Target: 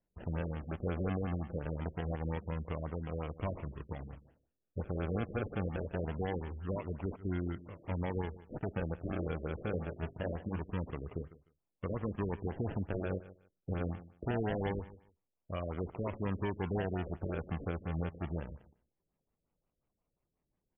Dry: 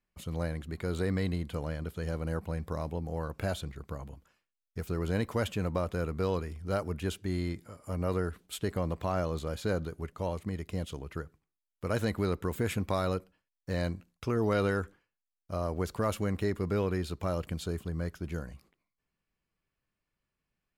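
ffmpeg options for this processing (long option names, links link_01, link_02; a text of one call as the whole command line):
ffmpeg -i in.wav -filter_complex "[0:a]asettb=1/sr,asplit=3[link_01][link_02][link_03];[link_01]atrim=end=9.694[link_04];[link_02]atrim=start=9.69:end=10.61,asetpts=PTS-STARTPTS,afade=type=in:duration=0.004:curve=qsin,afade=type=out:start_time=0.916:duration=0.004:curve=qsin,bandreject=frequency=50:width_type=h:width=6,bandreject=frequency=100:width_type=h:width=6,bandreject=frequency=150:width_type=h:width=6,bandreject=frequency=200:width_type=h:width=6,bandreject=frequency=250:width_type=h:width=6,bandreject=frequency=300:width_type=h:width=6,bandreject=frequency=350:width_type=h:width=6,bandreject=frequency=400:width_type=h:width=6,bandreject=frequency=450:width_type=h:width=6,bandreject=frequency=500:width_type=h:width=6[link_05];[link_03]atrim=start=10.606[link_06];[link_04][link_05]acrossfade=duration=0.004:curve1=hsin:curve2=qsin[link_07];[link_07][link_06]acrossfade=duration=0.004:curve1=qsin:curve2=hsin,acrusher=samples=36:mix=1:aa=0.000001:lfo=1:lforange=21.6:lforate=0.24,asplit=2[link_08][link_09];[link_09]aecho=0:1:151|302:0.106|0.0169[link_10];[link_08][link_10]amix=inputs=2:normalize=0,alimiter=level_in=2.5dB:limit=-24dB:level=0:latency=1:release=330,volume=-2.5dB,afftfilt=real='re*lt(b*sr/1024,590*pow(3500/590,0.5+0.5*sin(2*PI*5.6*pts/sr)))':imag='im*lt(b*sr/1024,590*pow(3500/590,0.5+0.5*sin(2*PI*5.6*pts/sr)))':win_size=1024:overlap=0.75" out.wav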